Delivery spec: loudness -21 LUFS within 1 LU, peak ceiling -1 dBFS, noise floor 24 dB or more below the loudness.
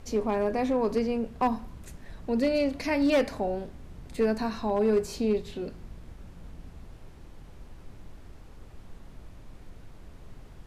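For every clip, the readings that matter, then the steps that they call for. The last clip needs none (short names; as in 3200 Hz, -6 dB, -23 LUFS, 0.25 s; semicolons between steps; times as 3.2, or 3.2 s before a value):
clipped 0.5%; flat tops at -18.0 dBFS; noise floor -48 dBFS; noise floor target -52 dBFS; loudness -28.0 LUFS; peak -18.0 dBFS; loudness target -21.0 LUFS
-> clip repair -18 dBFS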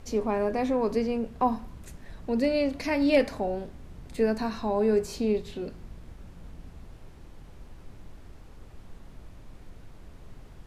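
clipped 0.0%; noise floor -48 dBFS; noise floor target -52 dBFS
-> noise print and reduce 6 dB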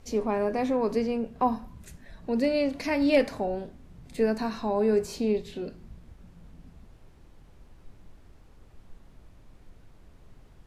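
noise floor -54 dBFS; loudness -27.5 LUFS; peak -11.0 dBFS; loudness target -21.0 LUFS
-> gain +6.5 dB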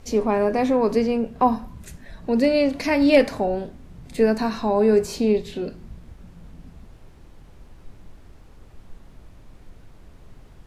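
loudness -21.0 LUFS; peak -4.5 dBFS; noise floor -48 dBFS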